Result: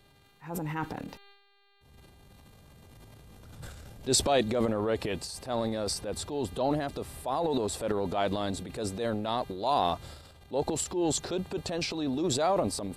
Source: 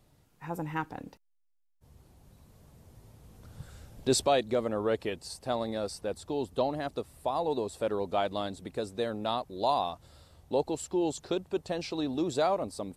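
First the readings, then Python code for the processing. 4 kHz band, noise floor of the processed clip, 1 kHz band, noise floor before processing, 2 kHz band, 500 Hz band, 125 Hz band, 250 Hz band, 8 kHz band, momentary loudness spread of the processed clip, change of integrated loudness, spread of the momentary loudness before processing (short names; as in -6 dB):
+3.5 dB, -61 dBFS, +1.0 dB, -70 dBFS, +1.5 dB, 0.0 dB, +4.5 dB, +2.0 dB, +6.5 dB, 13 LU, +1.5 dB, 10 LU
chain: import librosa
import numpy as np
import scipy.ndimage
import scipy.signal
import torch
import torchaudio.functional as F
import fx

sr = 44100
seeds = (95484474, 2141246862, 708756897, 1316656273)

y = fx.dmg_buzz(x, sr, base_hz=400.0, harmonics=11, level_db=-68.0, tilt_db=-1, odd_only=False)
y = fx.transient(y, sr, attack_db=-6, sustain_db=10)
y = y * 10.0 ** (1.0 / 20.0)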